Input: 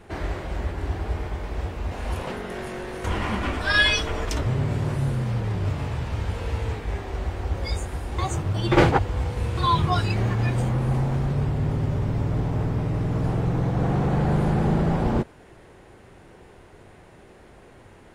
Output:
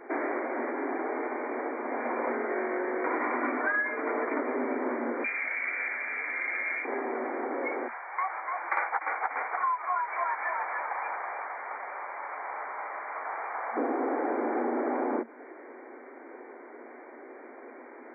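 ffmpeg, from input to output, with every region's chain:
-filter_complex "[0:a]asettb=1/sr,asplit=3[s0][s1][s2];[s0]atrim=end=5.244[s3];[s1]atrim=start=5.24:end=6.85,asetpts=PTS-STARTPTS,afade=t=in:d=0.004:c=qsin,afade=t=out:st=1.606:d=0.004:c=qsin,lowpass=f=2200:t=q:w=0.5098,lowpass=f=2200:t=q:w=0.6013,lowpass=f=2200:t=q:w=0.9,lowpass=f=2200:t=q:w=2.563,afreqshift=-2600,equalizer=f=1000:t=o:w=0.7:g=-5[s4];[s2]atrim=start=6.846[s5];[s3][s4]acrossfade=d=0.004:c1=hsin:c2=qsin[s6];[s6][s5]acrossfade=d=0.004:c1=qsin:c2=hsin,asettb=1/sr,asplit=3[s7][s8][s9];[s7]atrim=end=7.884[s10];[s8]atrim=start=7.88:end=13.77,asetpts=PTS-STARTPTS,afade=t=in:d=0.004:c=qsin,afade=t=out:st=5.886:d=0.004:c=qsin,highpass=f=840:w=0.5412,highpass=f=840:w=1.3066,asplit=7[s11][s12][s13][s14][s15][s16][s17];[s12]adelay=293,afreqshift=-37,volume=0.501[s18];[s13]adelay=586,afreqshift=-74,volume=0.24[s19];[s14]adelay=879,afreqshift=-111,volume=0.115[s20];[s15]adelay=1172,afreqshift=-148,volume=0.0556[s21];[s16]adelay=1465,afreqshift=-185,volume=0.0266[s22];[s17]adelay=1758,afreqshift=-222,volume=0.0127[s23];[s11][s18][s19][s20][s21][s22][s23]amix=inputs=7:normalize=0,atrim=end_sample=259749[s24];[s9]atrim=start=13.766[s25];[s10][s24]acrossfade=d=0.004:c1=hsin:c2=qsin[s26];[s26][s25]acrossfade=d=0.004:c1=qsin:c2=hsin,afftfilt=real='re*between(b*sr/4096,230,2400)':imag='im*between(b*sr/4096,230,2400)':win_size=4096:overlap=0.75,acompressor=threshold=0.0316:ratio=12,volume=1.68"

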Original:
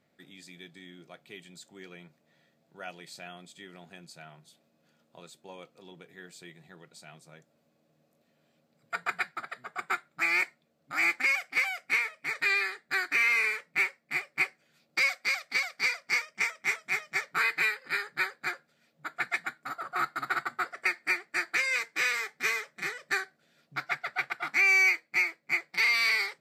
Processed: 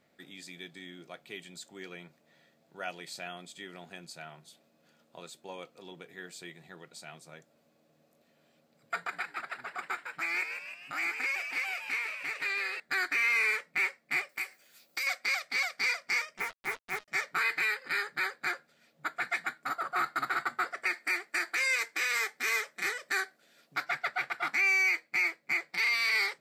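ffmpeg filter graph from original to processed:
-filter_complex "[0:a]asettb=1/sr,asplit=3[s0][s1][s2];[s0]atrim=end=8.974[s3];[s1]atrim=start=8.97:end=12.8,asetpts=PTS-STARTPTS,afade=t=in:d=0.004:c=qsin,afade=t=out:st=3.826:d=0.004:c=qsin,acompressor=threshold=0.00891:ratio=2:attack=3.2:release=140:knee=1:detection=peak,asplit=8[s4][s5][s6][s7][s8][s9][s10][s11];[s5]adelay=155,afreqshift=120,volume=0.447[s12];[s6]adelay=310,afreqshift=240,volume=0.24[s13];[s7]adelay=465,afreqshift=360,volume=0.13[s14];[s8]adelay=620,afreqshift=480,volume=0.07[s15];[s9]adelay=775,afreqshift=600,volume=0.038[s16];[s10]adelay=930,afreqshift=720,volume=0.0204[s17];[s11]adelay=1085,afreqshift=840,volume=0.0111[s18];[s4][s12][s13][s14][s15][s16][s17][s18]amix=inputs=8:normalize=0,atrim=end_sample=168903[s19];[s2]atrim=start=12.796[s20];[s3][s19]acrossfade=d=0.004:c1=hsin:c2=qsin[s21];[s21][s20]acrossfade=d=0.004:c1=qsin:c2=hsin,asettb=1/sr,asplit=3[s22][s23][s24];[s22]atrim=end=14.294[s25];[s23]atrim=start=14.29:end=15.07,asetpts=PTS-STARTPTS,afade=t=in:d=0.004:c=qsin,afade=t=out:st=0.776:d=0.004:c=qsin,aemphasis=mode=production:type=bsi,acompressor=threshold=0.0112:ratio=3:attack=3.2:release=140:knee=1:detection=peak[s26];[s24]atrim=start=15.066[s27];[s25][s26]acrossfade=d=0.004:c1=hsin:c2=qsin[s28];[s28][s27]acrossfade=d=0.004:c1=qsin:c2=hsin,asettb=1/sr,asplit=3[s29][s30][s31];[s29]atrim=end=16.384[s32];[s30]atrim=start=16.38:end=17.08,asetpts=PTS-STARTPTS,afade=t=in:d=0.004:c=qsin,afade=t=out:st=0.696:d=0.004:c=qsin,lowpass=1200,acrusher=bits=6:mix=0:aa=0.5[s33];[s31]atrim=start=17.076[s34];[s32][s33]acrossfade=d=0.004:c1=hsin:c2=qsin[s35];[s35][s34]acrossfade=d=0.004:c1=qsin:c2=hsin,asettb=1/sr,asplit=3[s36][s37][s38];[s36]atrim=end=20.934[s39];[s37]atrim=start=20.93:end=23.85,asetpts=PTS-STARTPTS,afade=t=in:d=0.004:c=qsin,afade=t=out:st=2.916:d=0.004:c=qsin,highpass=210,equalizer=f=12000:w=0.51:g=5[s40];[s38]atrim=start=23.846[s41];[s39][s40]acrossfade=d=0.004:c1=hsin:c2=qsin[s42];[s42][s41]acrossfade=d=0.004:c1=qsin:c2=hsin,equalizer=f=130:t=o:w=1.7:g=-4.5,alimiter=limit=0.0631:level=0:latency=1:release=25,volume=1.5"

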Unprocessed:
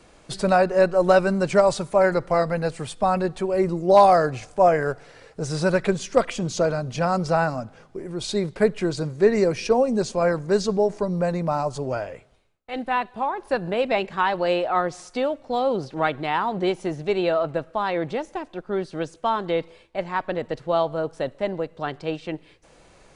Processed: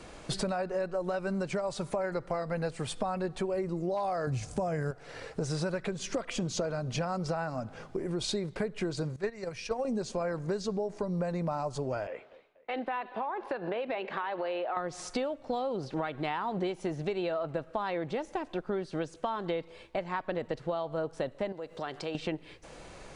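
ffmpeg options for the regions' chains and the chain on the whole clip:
-filter_complex "[0:a]asettb=1/sr,asplit=3[s0][s1][s2];[s0]atrim=end=4.274[s3];[s1]atrim=start=4.27:end=4.91,asetpts=PTS-STARTPTS,afade=t=in:d=0.004:c=qsin,afade=t=out:st=0.636:d=0.004:c=qsin,highpass=44,bass=f=250:g=14,treble=f=4000:g=10[s4];[s2]atrim=start=4.906[s5];[s3][s4]acrossfade=d=0.004:c1=hsin:c2=qsin[s6];[s6][s5]acrossfade=d=0.004:c1=qsin:c2=hsin,asettb=1/sr,asplit=3[s7][s8][s9];[s7]atrim=end=9.164[s10];[s8]atrim=start=9.16:end=9.85,asetpts=PTS-STARTPTS,afade=t=in:d=0.004:c=qsin,afade=t=out:st=0.686:d=0.004:c=qsin,equalizer=f=310:t=o:w=1.5:g=-11,agate=range=0.224:threshold=0.0631:ratio=16:release=100:detection=peak[s11];[s9]atrim=start=9.846[s12];[s10][s11]acrossfade=d=0.004:c1=hsin:c2=qsin[s13];[s13][s12]acrossfade=d=0.004:c1=qsin:c2=hsin,asettb=1/sr,asplit=3[s14][s15][s16];[s14]atrim=end=12.074[s17];[s15]atrim=start=12.07:end=14.77,asetpts=PTS-STARTPTS,afade=t=in:d=0.004:c=qsin,afade=t=out:st=2.696:d=0.004:c=qsin,acrossover=split=260 4000:gain=0.0794 1 0.0891[s18][s19][s20];[s18][s19][s20]amix=inputs=3:normalize=0,acompressor=threshold=0.0251:ratio=3:attack=3.2:release=140:knee=1:detection=peak,asplit=2[s21][s22];[s22]adelay=240,lowpass=f=3500:p=1,volume=0.0841,asplit=2[s23][s24];[s24]adelay=240,lowpass=f=3500:p=1,volume=0.45,asplit=2[s25][s26];[s26]adelay=240,lowpass=f=3500:p=1,volume=0.45[s27];[s21][s23][s25][s27]amix=inputs=4:normalize=0,atrim=end_sample=119070[s28];[s16]atrim=start=14.766[s29];[s17][s28]acrossfade=d=0.004:c1=hsin:c2=qsin[s30];[s30][s29]acrossfade=d=0.004:c1=qsin:c2=hsin,asettb=1/sr,asplit=3[s31][s32][s33];[s31]atrim=end=21.524[s34];[s32]atrim=start=21.52:end=22.15,asetpts=PTS-STARTPTS,afade=t=in:d=0.004:c=qsin,afade=t=out:st=0.626:d=0.004:c=qsin,bass=f=250:g=-8,treble=f=4000:g=6,acompressor=threshold=0.01:ratio=2.5:attack=3.2:release=140:knee=1:detection=peak[s35];[s33]atrim=start=22.146[s36];[s34][s35]acrossfade=d=0.004:c1=hsin:c2=qsin[s37];[s37][s36]acrossfade=d=0.004:c1=qsin:c2=hsin,alimiter=limit=0.188:level=0:latency=1:release=207,highshelf=f=8600:g=-4,acompressor=threshold=0.0178:ratio=6,volume=1.68"

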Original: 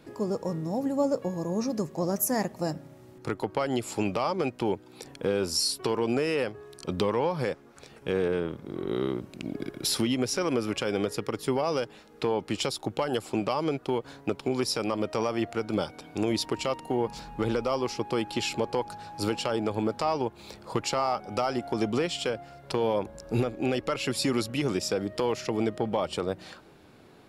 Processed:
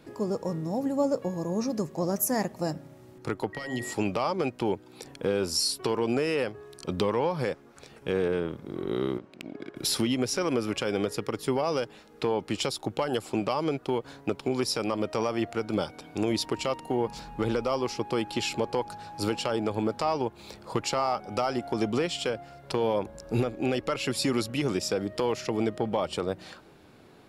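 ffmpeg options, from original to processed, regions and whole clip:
-filter_complex "[0:a]asettb=1/sr,asplit=3[s0][s1][s2];[s0]atrim=end=3.534[s3];[s1]atrim=start=3.53:end=3.94,asetpts=PTS-STARTPTS,afade=t=in:d=0.004:c=qsin,afade=t=out:st=0.406:d=0.004:c=qsin,bandreject=f=45.91:t=h:w=4,bandreject=f=91.82:t=h:w=4,bandreject=f=137.73:t=h:w=4,bandreject=f=183.64:t=h:w=4,bandreject=f=229.55:t=h:w=4,bandreject=f=275.46:t=h:w=4,bandreject=f=321.37:t=h:w=4,bandreject=f=367.28:t=h:w=4,bandreject=f=413.19:t=h:w=4,bandreject=f=459.1:t=h:w=4,bandreject=f=505.01:t=h:w=4,bandreject=f=550.92:t=h:w=4,bandreject=f=596.83:t=h:w=4,bandreject=f=642.74:t=h:w=4,bandreject=f=688.65:t=h:w=4,bandreject=f=734.56:t=h:w=4,bandreject=f=780.47:t=h:w=4,bandreject=f=826.38:t=h:w=4,bandreject=f=872.29:t=h:w=4,bandreject=f=918.2:t=h:w=4,bandreject=f=964.11:t=h:w=4,bandreject=f=1010.02:t=h:w=4,bandreject=f=1055.93:t=h:w=4,bandreject=f=1101.84:t=h:w=4,acrossover=split=290|3000[s4][s5][s6];[s5]acompressor=threshold=0.0112:ratio=6:attack=3.2:release=140:knee=2.83:detection=peak[s7];[s4][s7][s6]amix=inputs=3:normalize=0,aeval=exprs='val(0)+0.0126*sin(2*PI*1900*n/s)':c=same[s8];[s2]atrim=start=3.936[s9];[s3][s8]acrossfade=d=0.004:c1=hsin:c2=qsin[s10];[s10][s9]acrossfade=d=0.004:c1=qsin:c2=hsin,asettb=1/sr,asplit=3[s11][s12][s13];[s11]atrim=end=9.184[s14];[s12]atrim=start=9.18:end=9.76,asetpts=PTS-STARTPTS,afade=t=in:d=0.004:c=qsin,afade=t=out:st=0.576:d=0.004:c=qsin,lowpass=8300,adynamicsmooth=sensitivity=1.5:basefreq=1900,aemphasis=mode=production:type=riaa[s15];[s13]atrim=start=9.756[s16];[s14][s15]acrossfade=d=0.004:c1=hsin:c2=qsin[s17];[s17][s16]acrossfade=d=0.004:c1=qsin:c2=hsin"

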